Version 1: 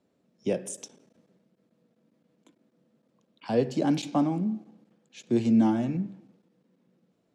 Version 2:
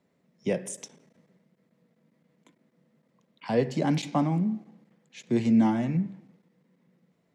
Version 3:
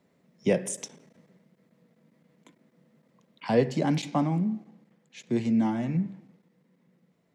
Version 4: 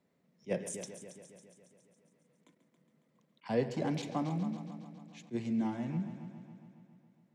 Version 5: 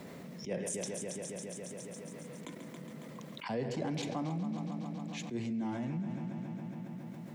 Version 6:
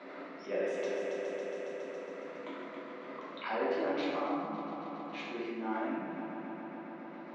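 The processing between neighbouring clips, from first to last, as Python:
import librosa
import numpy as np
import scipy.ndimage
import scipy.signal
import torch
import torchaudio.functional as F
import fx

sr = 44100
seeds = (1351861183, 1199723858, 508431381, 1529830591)

y1 = fx.graphic_eq_31(x, sr, hz=(160, 315, 1000, 2000), db=(7, -4, 4, 10))
y2 = fx.rider(y1, sr, range_db=10, speed_s=0.5)
y3 = fx.echo_heads(y2, sr, ms=138, heads='first and second', feedback_pct=58, wet_db=-14.5)
y3 = fx.attack_slew(y3, sr, db_per_s=430.0)
y3 = y3 * 10.0 ** (-8.5 / 20.0)
y4 = fx.env_flatten(y3, sr, amount_pct=70)
y4 = y4 * 10.0 ** (-7.0 / 20.0)
y5 = fx.cabinet(y4, sr, low_hz=320.0, low_slope=24, high_hz=3700.0, hz=(470.0, 830.0, 1300.0, 3200.0), db=(-5, -3, 8, -5))
y5 = fx.rev_plate(y5, sr, seeds[0], rt60_s=1.6, hf_ratio=0.55, predelay_ms=0, drr_db=-6.0)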